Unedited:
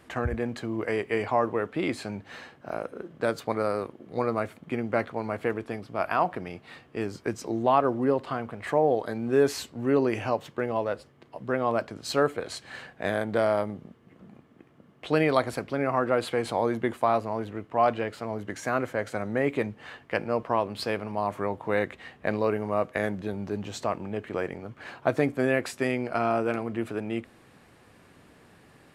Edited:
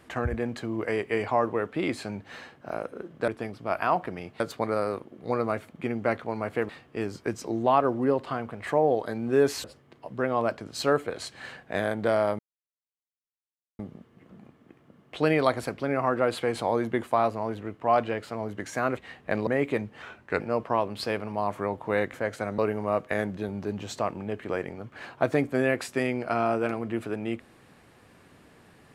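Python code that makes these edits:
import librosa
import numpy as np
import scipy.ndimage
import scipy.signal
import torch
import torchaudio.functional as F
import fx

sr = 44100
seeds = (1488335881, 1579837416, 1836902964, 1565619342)

y = fx.edit(x, sr, fx.move(start_s=5.57, length_s=1.12, to_s=3.28),
    fx.cut(start_s=9.64, length_s=1.3),
    fx.insert_silence(at_s=13.69, length_s=1.4),
    fx.swap(start_s=18.87, length_s=0.45, other_s=21.93, other_length_s=0.5),
    fx.speed_span(start_s=19.87, length_s=0.33, speed=0.86), tone=tone)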